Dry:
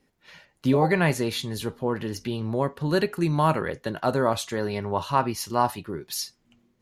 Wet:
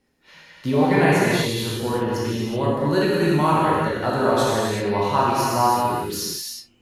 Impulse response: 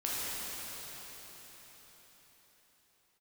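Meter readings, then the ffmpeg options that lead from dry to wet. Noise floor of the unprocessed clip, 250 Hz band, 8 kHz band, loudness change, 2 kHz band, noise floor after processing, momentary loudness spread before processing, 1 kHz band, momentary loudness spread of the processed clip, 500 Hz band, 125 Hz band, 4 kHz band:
-69 dBFS, +5.0 dB, +5.5 dB, +5.0 dB, +5.5 dB, -58 dBFS, 9 LU, +6.0 dB, 8 LU, +5.0 dB, +3.5 dB, +5.5 dB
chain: -filter_complex "[1:a]atrim=start_sample=2205,afade=t=out:st=0.44:d=0.01,atrim=end_sample=19845[a];[0:a][a]afir=irnorm=-1:irlink=0"

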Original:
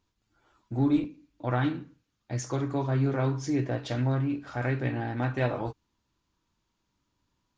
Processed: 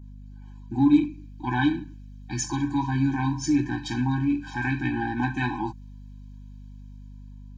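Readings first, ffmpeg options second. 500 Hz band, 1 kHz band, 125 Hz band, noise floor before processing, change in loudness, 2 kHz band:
-7.0 dB, +5.0 dB, -0.5 dB, -79 dBFS, +3.5 dB, +6.5 dB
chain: -filter_complex "[0:a]highpass=200,adynamicequalizer=threshold=0.00251:dfrequency=3200:dqfactor=0.91:tfrequency=3200:tqfactor=0.91:attack=5:release=100:ratio=0.375:range=3:mode=cutabove:tftype=bell,acrossover=split=1800[a][b];[b]dynaudnorm=f=440:g=5:m=5dB[c];[a][c]amix=inputs=2:normalize=0,aeval=exprs='val(0)+0.00355*(sin(2*PI*50*n/s)+sin(2*PI*2*50*n/s)/2+sin(2*PI*3*50*n/s)/3+sin(2*PI*4*50*n/s)/4+sin(2*PI*5*50*n/s)/5)':c=same,afftfilt=real='re*eq(mod(floor(b*sr/1024/370),2),0)':imag='im*eq(mod(floor(b*sr/1024/370),2),0)':win_size=1024:overlap=0.75,volume=7.5dB"

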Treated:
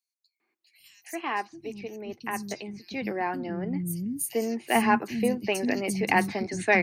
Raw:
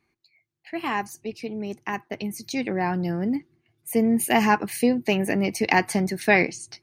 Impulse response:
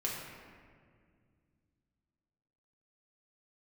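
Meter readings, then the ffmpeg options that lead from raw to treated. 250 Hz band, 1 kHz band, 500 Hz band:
-5.0 dB, -2.5 dB, -3.5 dB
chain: -filter_complex "[0:a]acrossover=split=260|4300[a][b][c];[b]adelay=400[d];[a]adelay=800[e];[e][d][c]amix=inputs=3:normalize=0,volume=-2.5dB"

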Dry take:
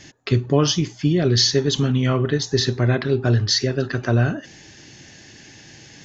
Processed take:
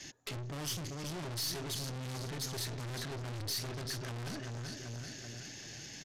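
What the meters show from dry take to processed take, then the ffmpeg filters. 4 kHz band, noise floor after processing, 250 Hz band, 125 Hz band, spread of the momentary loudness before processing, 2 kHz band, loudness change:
-17.0 dB, -48 dBFS, -22.5 dB, -20.0 dB, 6 LU, -16.5 dB, -20.0 dB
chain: -filter_complex "[0:a]asplit=2[a][b];[b]aecho=0:1:386|772|1158|1544|1930:0.237|0.116|0.0569|0.0279|0.0137[c];[a][c]amix=inputs=2:normalize=0,adynamicequalizer=threshold=0.0251:dfrequency=110:dqfactor=1.9:tfrequency=110:tqfactor=1.9:attack=5:release=100:ratio=0.375:range=3:mode=boostabove:tftype=bell,aeval=exprs='(tanh(50.1*val(0)+0.3)-tanh(0.3))/50.1':c=same,highshelf=f=3.7k:g=8.5,aresample=32000,aresample=44100,volume=-6dB"

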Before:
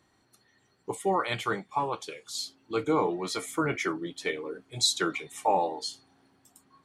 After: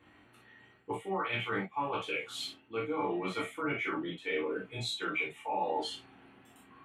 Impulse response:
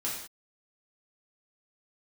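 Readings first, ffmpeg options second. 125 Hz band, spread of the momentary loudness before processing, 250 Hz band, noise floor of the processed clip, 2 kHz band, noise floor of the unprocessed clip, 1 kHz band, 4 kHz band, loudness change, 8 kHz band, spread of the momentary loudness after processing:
-4.5 dB, 11 LU, -5.0 dB, -62 dBFS, -0.5 dB, -68 dBFS, -6.0 dB, -7.5 dB, -5.0 dB, -15.0 dB, 7 LU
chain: -filter_complex "[0:a]highshelf=f=3.8k:t=q:w=3:g=-11.5,areverse,acompressor=threshold=-37dB:ratio=12,areverse[a];[1:a]atrim=start_sample=2205,atrim=end_sample=3087[b];[a][b]afir=irnorm=-1:irlink=0,volume=3dB"

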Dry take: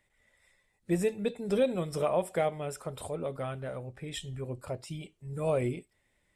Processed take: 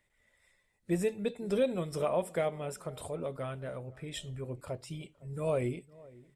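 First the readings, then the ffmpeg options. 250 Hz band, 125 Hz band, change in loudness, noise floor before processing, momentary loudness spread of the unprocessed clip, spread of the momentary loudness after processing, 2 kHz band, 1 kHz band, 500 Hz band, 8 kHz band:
-2.0 dB, -2.0 dB, -2.0 dB, -74 dBFS, 11 LU, 12 LU, -2.0 dB, -3.5 dB, -2.0 dB, -2.0 dB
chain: -filter_complex "[0:a]bandreject=f=790:w=20,asplit=2[a][b];[b]adelay=509,lowpass=f=1.1k:p=1,volume=-21.5dB,asplit=2[c][d];[d]adelay=509,lowpass=f=1.1k:p=1,volume=0.5,asplit=2[e][f];[f]adelay=509,lowpass=f=1.1k:p=1,volume=0.5,asplit=2[g][h];[h]adelay=509,lowpass=f=1.1k:p=1,volume=0.5[i];[a][c][e][g][i]amix=inputs=5:normalize=0,volume=-2dB"

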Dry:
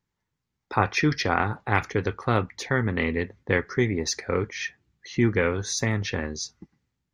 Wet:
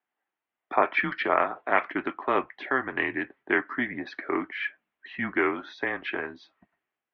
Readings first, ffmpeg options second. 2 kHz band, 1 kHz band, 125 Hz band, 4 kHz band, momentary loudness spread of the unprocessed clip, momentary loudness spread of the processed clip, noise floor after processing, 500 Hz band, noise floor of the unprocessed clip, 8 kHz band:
+0.5 dB, +1.0 dB, -20.5 dB, -8.5 dB, 8 LU, 9 LU, under -85 dBFS, -2.5 dB, -82 dBFS, under -35 dB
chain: -af "highpass=f=470:t=q:w=0.5412,highpass=f=470:t=q:w=1.307,lowpass=f=3.1k:t=q:w=0.5176,lowpass=f=3.1k:t=q:w=0.7071,lowpass=f=3.1k:t=q:w=1.932,afreqshift=-130,volume=1.5dB"

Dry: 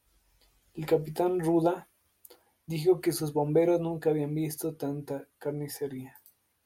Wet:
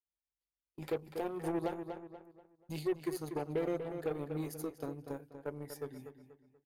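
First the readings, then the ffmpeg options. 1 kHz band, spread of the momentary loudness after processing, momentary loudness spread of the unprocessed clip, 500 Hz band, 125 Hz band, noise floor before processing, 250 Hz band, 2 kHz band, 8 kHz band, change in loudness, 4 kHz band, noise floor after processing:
-8.5 dB, 13 LU, 13 LU, -10.0 dB, -10.5 dB, -74 dBFS, -10.0 dB, -5.5 dB, -11.5 dB, -10.0 dB, -9.5 dB, under -85 dBFS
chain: -filter_complex "[0:a]aeval=exprs='0.224*(cos(1*acos(clip(val(0)/0.224,-1,1)))-cos(1*PI/2))+0.0224*(cos(3*acos(clip(val(0)/0.224,-1,1)))-cos(3*PI/2))+0.0158*(cos(7*acos(clip(val(0)/0.224,-1,1)))-cos(7*PI/2))':c=same,asplit=2[a][b];[b]acompressor=threshold=-38dB:ratio=6,volume=2.5dB[c];[a][c]amix=inputs=2:normalize=0,asoftclip=type=tanh:threshold=-16dB,agate=range=-26dB:threshold=-50dB:ratio=16:detection=peak,asplit=2[d][e];[e]adelay=241,lowpass=f=4k:p=1,volume=-9.5dB,asplit=2[f][g];[g]adelay=241,lowpass=f=4k:p=1,volume=0.36,asplit=2[h][i];[i]adelay=241,lowpass=f=4k:p=1,volume=0.36,asplit=2[j][k];[k]adelay=241,lowpass=f=4k:p=1,volume=0.36[l];[f][h][j][l]amix=inputs=4:normalize=0[m];[d][m]amix=inputs=2:normalize=0,alimiter=limit=-20.5dB:level=0:latency=1:release=309,volume=-5.5dB"

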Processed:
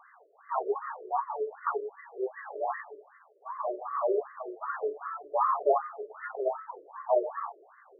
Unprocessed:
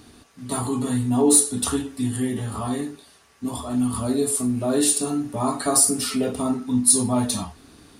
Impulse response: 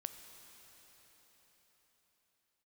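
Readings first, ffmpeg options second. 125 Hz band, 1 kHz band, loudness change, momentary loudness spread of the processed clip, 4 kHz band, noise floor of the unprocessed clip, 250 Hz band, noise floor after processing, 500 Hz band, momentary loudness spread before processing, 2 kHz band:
under -40 dB, +0.5 dB, -11.0 dB, 14 LU, under -40 dB, -52 dBFS, -25.0 dB, -59 dBFS, -3.5 dB, 13 LU, -4.0 dB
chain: -filter_complex "[0:a]highpass=330,lowpass=5.5k,asplit=2[a][b];[1:a]atrim=start_sample=2205,afade=t=out:st=0.18:d=0.01,atrim=end_sample=8379[c];[b][c]afir=irnorm=-1:irlink=0,volume=8dB[d];[a][d]amix=inputs=2:normalize=0,afftfilt=real='re*between(b*sr/1024,440*pow(1500/440,0.5+0.5*sin(2*PI*2.6*pts/sr))/1.41,440*pow(1500/440,0.5+0.5*sin(2*PI*2.6*pts/sr))*1.41)':imag='im*between(b*sr/1024,440*pow(1500/440,0.5+0.5*sin(2*PI*2.6*pts/sr))/1.41,440*pow(1500/440,0.5+0.5*sin(2*PI*2.6*pts/sr))*1.41)':win_size=1024:overlap=0.75,volume=-4dB"

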